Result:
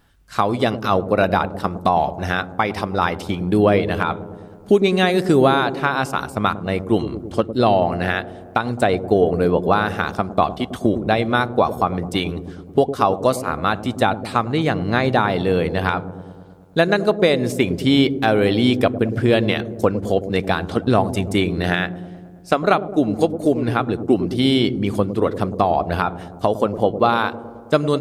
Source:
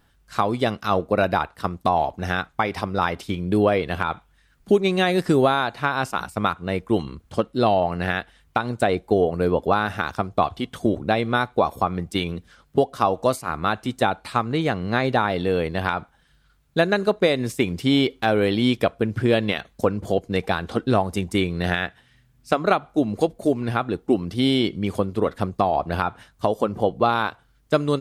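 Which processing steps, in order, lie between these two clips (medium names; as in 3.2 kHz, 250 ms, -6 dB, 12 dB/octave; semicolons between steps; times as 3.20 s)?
feedback echo behind a low-pass 107 ms, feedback 69%, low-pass 460 Hz, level -8 dB; trim +3 dB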